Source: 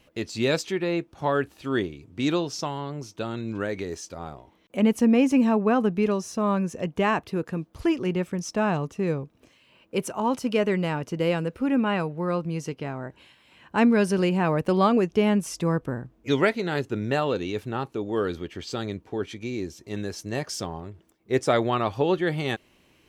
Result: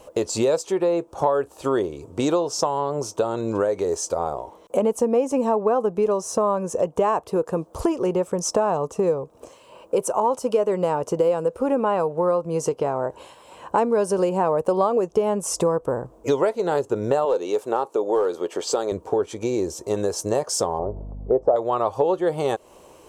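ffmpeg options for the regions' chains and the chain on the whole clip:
-filter_complex "[0:a]asettb=1/sr,asplit=3[a][b][c];[a]atrim=end=17.254[d];[b]atrim=start=17.25:end=18.92,asetpts=PTS-STARTPTS,afade=t=in:d=0.004:c=qsin,afade=t=out:st=1.666:d=0.004:c=qsin,highpass=300,aeval=exprs='clip(val(0),-1,0.075)':c=same[e];[c]atrim=start=18.916[f];[d][e]acrossfade=d=0.004:c1=hsin:c2=qsin[g];[g][f]acrossfade=d=0.004:c1=qsin:c2=hsin,asettb=1/sr,asplit=3[h][i][j];[h]atrim=end=20.794[k];[i]atrim=start=20.79:end=21.56,asetpts=PTS-STARTPTS,afade=t=in:d=0.004:c=qsin,afade=t=out:st=0.766:d=0.004:c=qsin,lowpass=f=700:t=q:w=1.9,aeval=exprs='val(0)+0.01*(sin(2*PI*50*n/s)+sin(2*PI*2*50*n/s)/2+sin(2*PI*3*50*n/s)/3+sin(2*PI*4*50*n/s)/4+sin(2*PI*5*50*n/s)/5)':c=same[l];[j]atrim=start=21.556[m];[k][l]acrossfade=d=0.004:c1=hsin:c2=qsin[n];[n][m]acrossfade=d=0.004:c1=qsin:c2=hsin,equalizer=f=125:t=o:w=1:g=-3,equalizer=f=250:t=o:w=1:g=-5,equalizer=f=500:t=o:w=1:g=12,equalizer=f=1k:t=o:w=1:g=10,equalizer=f=2k:t=o:w=1:g=-10,equalizer=f=4k:t=o:w=1:g=-4,equalizer=f=8k:t=o:w=1:g=10,acompressor=threshold=-28dB:ratio=4,volume=8dB"

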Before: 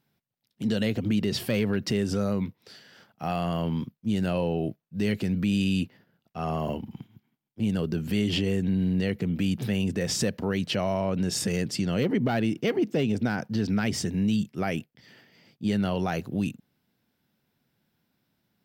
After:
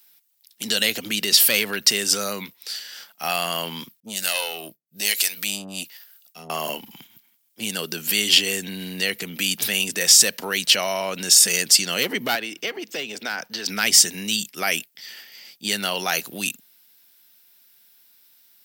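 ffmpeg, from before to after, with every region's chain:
-filter_complex "[0:a]asettb=1/sr,asplit=3[a][b][c];[a]atrim=end=4.004[d];[b]atrim=start=4:end=6.5,asetpts=PTS-STARTPTS,afade=t=in:d=0.004:c=qsin,afade=t=out:st=2.496:d=0.004:c=qsin,highshelf=f=3.2k:g=11.5,acrossover=split=450[e][f];[e]aeval=exprs='val(0)*(1-1/2+1/2*cos(2*PI*1.2*n/s))':c=same[g];[f]aeval=exprs='val(0)*(1-1/2-1/2*cos(2*PI*1.2*n/s))':c=same[h];[g][h]amix=inputs=2:normalize=0,aeval=exprs='(tanh(15.8*val(0)+0.45)-tanh(0.45))/15.8':c=same[i];[c]atrim=start=6.496[j];[d][i]acrossfade=d=0.004:c1=hsin:c2=qsin[k];[k][j]acrossfade=d=0.004:c1=qsin:c2=hsin,asettb=1/sr,asplit=3[l][m][n];[l]atrim=end=12.354[o];[m]atrim=start=12.35:end=13.66,asetpts=PTS-STARTPTS,afade=t=in:d=0.004:c=qsin,afade=t=out:st=1.306:d=0.004:c=qsin,equalizer=f=11k:w=0.65:g=-10,acrossover=split=320|2000[p][q][r];[p]acompressor=threshold=-38dB:ratio=4[s];[q]acompressor=threshold=-32dB:ratio=4[t];[r]acompressor=threshold=-46dB:ratio=4[u];[s][t][u]amix=inputs=3:normalize=0,bandreject=f=60:t=h:w=6,bandreject=f=120:t=h:w=6,bandreject=f=180:t=h:w=6[v];[n]atrim=start=13.656[w];[o][v]acrossfade=d=0.004:c1=hsin:c2=qsin[x];[x][w]acrossfade=d=0.004:c1=qsin:c2=hsin,highpass=130,aderivative,alimiter=level_in=24dB:limit=-1dB:release=50:level=0:latency=1,volume=-1dB"

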